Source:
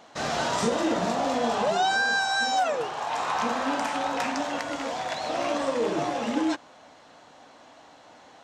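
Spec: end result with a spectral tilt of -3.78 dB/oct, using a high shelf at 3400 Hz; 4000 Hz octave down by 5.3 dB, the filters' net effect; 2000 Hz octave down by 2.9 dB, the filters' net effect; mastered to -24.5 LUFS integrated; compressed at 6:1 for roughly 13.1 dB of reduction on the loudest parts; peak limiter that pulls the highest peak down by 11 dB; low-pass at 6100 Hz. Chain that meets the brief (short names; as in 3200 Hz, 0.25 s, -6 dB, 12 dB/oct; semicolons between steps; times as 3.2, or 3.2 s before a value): LPF 6100 Hz; bell 2000 Hz -4 dB; high shelf 3400 Hz +5.5 dB; bell 4000 Hz -8.5 dB; compressor 6:1, threshold -36 dBFS; gain +20.5 dB; limiter -16 dBFS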